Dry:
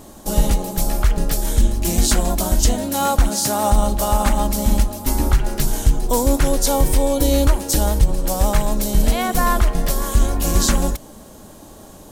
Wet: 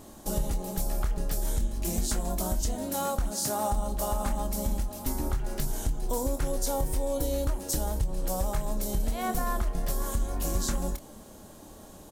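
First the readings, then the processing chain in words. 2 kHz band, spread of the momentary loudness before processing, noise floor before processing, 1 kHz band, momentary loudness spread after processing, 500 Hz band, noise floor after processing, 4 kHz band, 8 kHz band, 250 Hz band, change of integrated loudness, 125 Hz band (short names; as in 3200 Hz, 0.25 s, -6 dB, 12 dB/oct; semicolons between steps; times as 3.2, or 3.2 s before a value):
-14.0 dB, 4 LU, -41 dBFS, -12.0 dB, 4 LU, -10.5 dB, -48 dBFS, -14.0 dB, -11.5 dB, -12.5 dB, -12.0 dB, -12.5 dB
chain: dynamic EQ 2800 Hz, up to -5 dB, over -36 dBFS, Q 0.76; compressor 4:1, threshold -18 dBFS, peak gain reduction 9 dB; doubler 27 ms -9.5 dB; gain -7.5 dB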